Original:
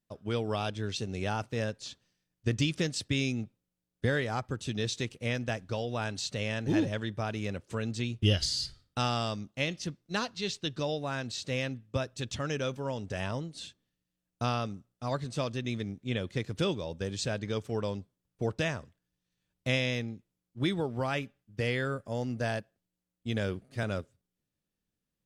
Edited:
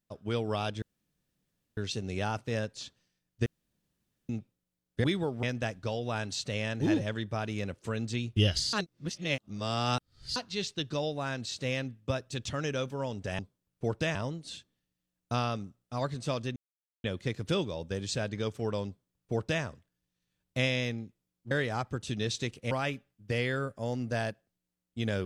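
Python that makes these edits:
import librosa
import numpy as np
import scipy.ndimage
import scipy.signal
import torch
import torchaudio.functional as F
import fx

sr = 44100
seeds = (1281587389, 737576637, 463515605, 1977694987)

y = fx.edit(x, sr, fx.insert_room_tone(at_s=0.82, length_s=0.95),
    fx.room_tone_fill(start_s=2.51, length_s=0.83),
    fx.swap(start_s=4.09, length_s=1.2, other_s=20.61, other_length_s=0.39),
    fx.reverse_span(start_s=8.59, length_s=1.63),
    fx.silence(start_s=15.66, length_s=0.48),
    fx.duplicate(start_s=17.97, length_s=0.76, to_s=13.25), tone=tone)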